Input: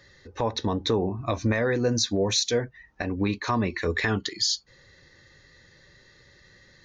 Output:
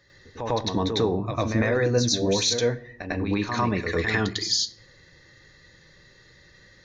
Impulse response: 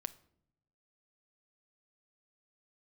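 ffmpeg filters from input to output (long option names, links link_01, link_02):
-filter_complex "[0:a]asplit=2[link_01][link_02];[1:a]atrim=start_sample=2205,adelay=100[link_03];[link_02][link_03]afir=irnorm=-1:irlink=0,volume=9dB[link_04];[link_01][link_04]amix=inputs=2:normalize=0,volume=-6dB"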